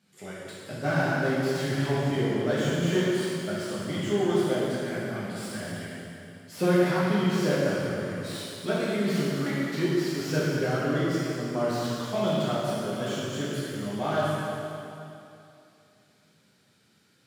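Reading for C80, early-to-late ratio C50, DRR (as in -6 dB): -1.5 dB, -3.5 dB, -8.5 dB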